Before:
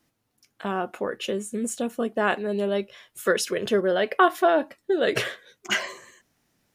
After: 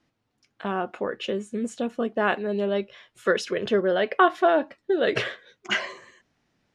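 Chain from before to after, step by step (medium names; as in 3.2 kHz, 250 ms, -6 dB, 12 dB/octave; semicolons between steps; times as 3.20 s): low-pass 4.5 kHz 12 dB/octave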